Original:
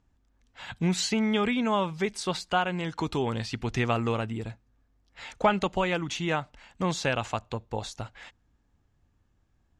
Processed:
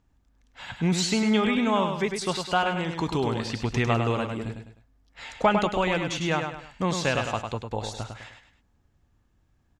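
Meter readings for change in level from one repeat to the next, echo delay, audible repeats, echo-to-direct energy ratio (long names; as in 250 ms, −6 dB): −8.5 dB, 102 ms, 3, −5.5 dB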